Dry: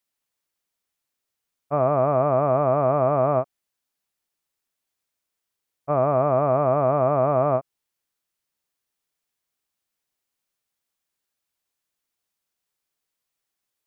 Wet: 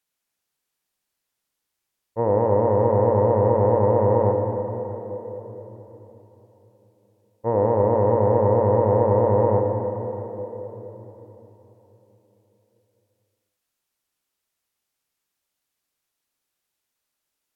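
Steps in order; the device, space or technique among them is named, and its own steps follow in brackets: slowed and reverbed (tape speed -21%; reverberation RT60 3.9 s, pre-delay 45 ms, DRR 2.5 dB)

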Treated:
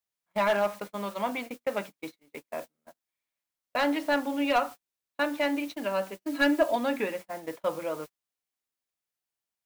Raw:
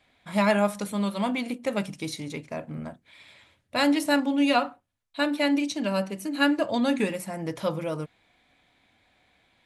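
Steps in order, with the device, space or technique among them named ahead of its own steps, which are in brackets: aircraft radio (band-pass 390–2500 Hz; hard clipper -18 dBFS, distortion -17 dB; white noise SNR 20 dB; gate -37 dBFS, range -39 dB); 6.22–6.76 s: comb 3.1 ms, depth 81%

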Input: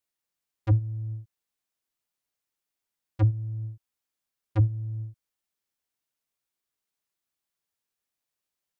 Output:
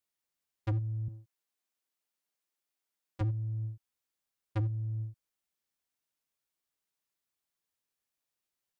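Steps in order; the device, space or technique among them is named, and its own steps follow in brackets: 1.08–3.21 s: high-pass 190 Hz; limiter into clipper (peak limiter -21.5 dBFS, peak gain reduction 8 dB; hard clipper -25.5 dBFS, distortion -16 dB); trim -2 dB

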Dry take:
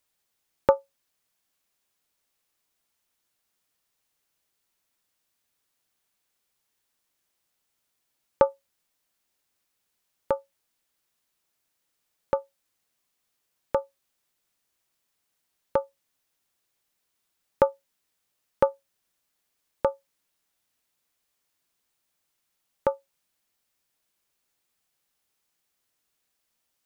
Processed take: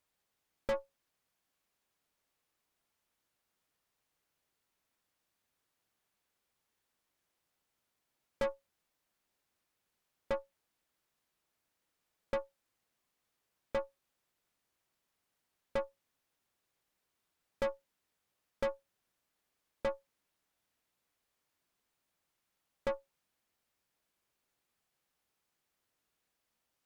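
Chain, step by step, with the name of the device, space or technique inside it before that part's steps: tube preamp driven hard (valve stage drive 33 dB, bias 0.75; treble shelf 3.1 kHz -8 dB); trim +4 dB

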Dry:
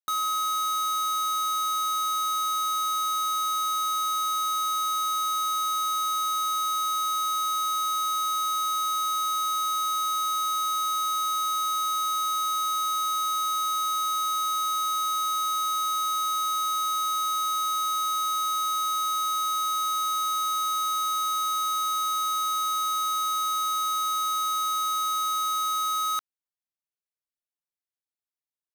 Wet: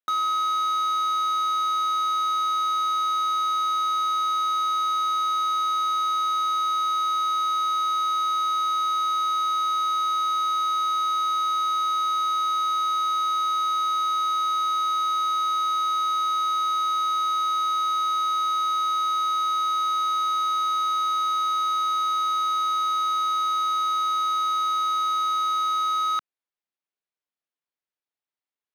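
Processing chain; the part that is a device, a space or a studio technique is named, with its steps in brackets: early digital voice recorder (band-pass 210–3600 Hz; block-companded coder 5-bit); trim +3.5 dB

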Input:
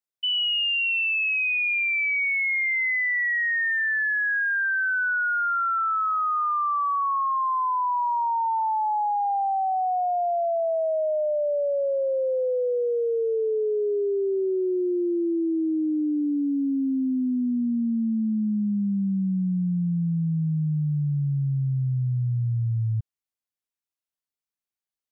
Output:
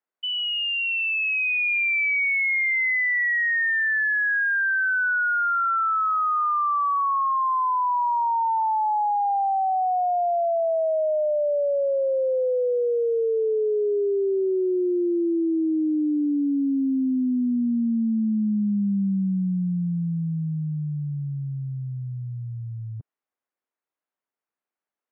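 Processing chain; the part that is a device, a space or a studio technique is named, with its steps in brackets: DJ mixer with the lows and highs turned down (three-band isolator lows -23 dB, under 220 Hz, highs -22 dB, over 2.1 kHz; peak limiter -28.5 dBFS, peak gain reduction 7 dB); trim +9 dB

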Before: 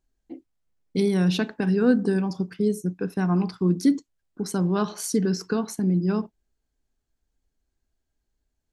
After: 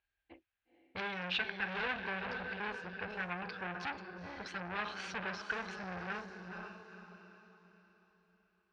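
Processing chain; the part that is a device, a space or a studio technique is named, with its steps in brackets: echo that smears into a reverb 483 ms, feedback 41%, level -8.5 dB; scooped metal amplifier (valve stage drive 28 dB, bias 0.45; cabinet simulation 93–3400 Hz, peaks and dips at 150 Hz -9 dB, 330 Hz +8 dB, 500 Hz +5 dB, 810 Hz +4 dB, 1.6 kHz +9 dB, 2.5 kHz +7 dB; amplifier tone stack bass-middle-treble 10-0-10); trim +5 dB

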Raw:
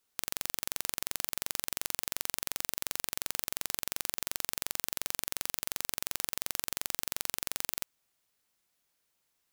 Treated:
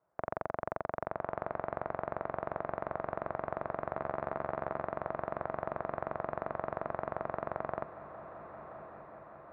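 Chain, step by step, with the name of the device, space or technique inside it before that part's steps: ring modulator pedal into a guitar cabinet (polarity switched at an audio rate 100 Hz; cabinet simulation 81–4200 Hz, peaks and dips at 250 Hz -9 dB, 650 Hz +10 dB, 3 kHz -8 dB); 3.92–4.82 s: doubling 14 ms -7 dB; low-pass 1.3 kHz 24 dB/octave; echo that smears into a reverb 1160 ms, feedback 61%, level -11 dB; trim +8.5 dB

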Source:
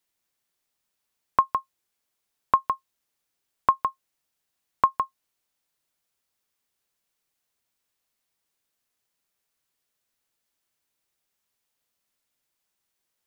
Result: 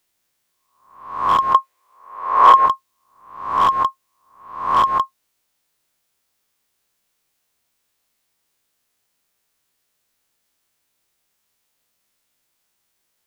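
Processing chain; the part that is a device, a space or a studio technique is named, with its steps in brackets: reverse spectral sustain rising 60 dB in 0.66 s; limiter into clipper (peak limiter -11.5 dBFS, peak gain reduction 7.5 dB; hard clipper -16 dBFS, distortion -18 dB); 1.54–2.66 s: graphic EQ 125/250/500/1000/2000 Hz -10/-3/+9/+4/+6 dB; trim +6.5 dB

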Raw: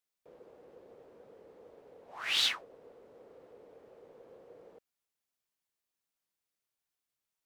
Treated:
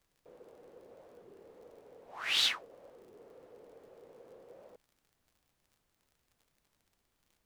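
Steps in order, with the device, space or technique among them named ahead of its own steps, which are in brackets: warped LP (warped record 33 1/3 rpm, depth 250 cents; crackle 56 per s -55 dBFS; pink noise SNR 36 dB)

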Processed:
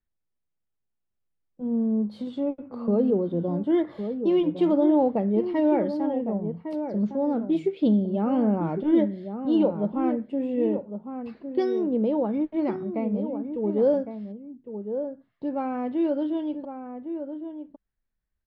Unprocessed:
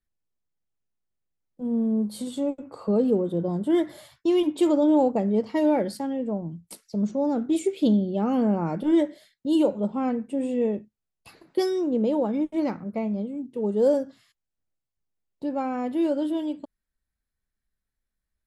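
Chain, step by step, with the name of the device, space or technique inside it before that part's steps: shout across a valley (distance through air 280 m; echo from a far wall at 190 m, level -8 dB)

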